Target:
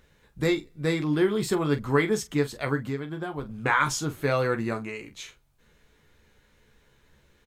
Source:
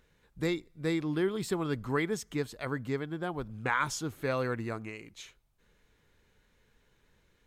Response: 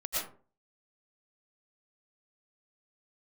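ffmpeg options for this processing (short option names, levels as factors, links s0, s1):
-filter_complex "[0:a]asettb=1/sr,asplit=3[s0][s1][s2];[s0]atrim=end=2.754[s3];[s1]atrim=start=2.75:end=3.49,asetpts=PTS-STARTPTS,afade=t=in:d=0.004:c=qsin,afade=t=out:st=0.736:d=0.004:c=qsin,acompressor=threshold=0.0178:ratio=6[s4];[s2]atrim=start=3.486[s5];[s3][s4]acrossfade=d=0.004:c1=hsin:c2=qsin[s6];[s6][s5]acrossfade=d=0.004:c1=qsin:c2=hsin,aecho=1:1:14|44:0.473|0.251,volume=1.88"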